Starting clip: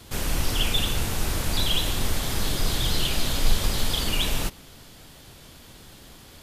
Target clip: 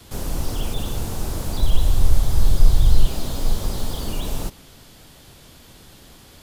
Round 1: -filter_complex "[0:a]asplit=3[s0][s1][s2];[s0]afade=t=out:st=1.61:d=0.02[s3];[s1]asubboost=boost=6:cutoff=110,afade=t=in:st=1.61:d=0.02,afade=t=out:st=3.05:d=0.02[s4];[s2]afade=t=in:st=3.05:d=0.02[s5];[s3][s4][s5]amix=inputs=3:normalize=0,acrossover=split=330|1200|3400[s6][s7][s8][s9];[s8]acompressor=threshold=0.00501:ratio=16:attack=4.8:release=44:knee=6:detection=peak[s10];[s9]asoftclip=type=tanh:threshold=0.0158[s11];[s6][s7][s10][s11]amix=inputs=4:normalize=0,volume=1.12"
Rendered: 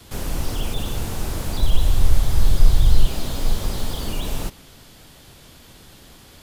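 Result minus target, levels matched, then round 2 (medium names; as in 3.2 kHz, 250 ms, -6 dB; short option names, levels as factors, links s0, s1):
compression: peak gain reduction -8.5 dB
-filter_complex "[0:a]asplit=3[s0][s1][s2];[s0]afade=t=out:st=1.61:d=0.02[s3];[s1]asubboost=boost=6:cutoff=110,afade=t=in:st=1.61:d=0.02,afade=t=out:st=3.05:d=0.02[s4];[s2]afade=t=in:st=3.05:d=0.02[s5];[s3][s4][s5]amix=inputs=3:normalize=0,acrossover=split=330|1200|3400[s6][s7][s8][s9];[s8]acompressor=threshold=0.00178:ratio=16:attack=4.8:release=44:knee=6:detection=peak[s10];[s9]asoftclip=type=tanh:threshold=0.0158[s11];[s6][s7][s10][s11]amix=inputs=4:normalize=0,volume=1.12"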